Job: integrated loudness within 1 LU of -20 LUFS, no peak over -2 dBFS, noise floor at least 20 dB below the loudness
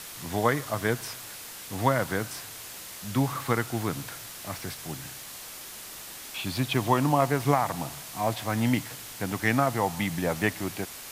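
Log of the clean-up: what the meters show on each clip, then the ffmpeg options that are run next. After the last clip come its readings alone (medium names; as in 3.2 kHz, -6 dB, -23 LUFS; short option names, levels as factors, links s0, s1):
noise floor -42 dBFS; noise floor target -49 dBFS; loudness -29.0 LUFS; peak level -8.0 dBFS; loudness target -20.0 LUFS
-> -af "afftdn=nr=7:nf=-42"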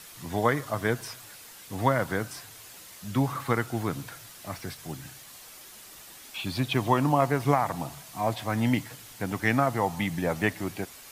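noise floor -48 dBFS; noise floor target -49 dBFS
-> -af "afftdn=nr=6:nf=-48"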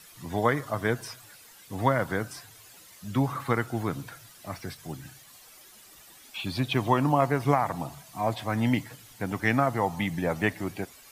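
noise floor -52 dBFS; loudness -28.5 LUFS; peak level -8.5 dBFS; loudness target -20.0 LUFS
-> -af "volume=2.66,alimiter=limit=0.794:level=0:latency=1"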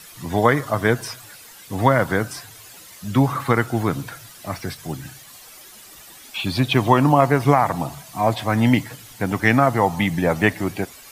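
loudness -20.0 LUFS; peak level -2.0 dBFS; noise floor -44 dBFS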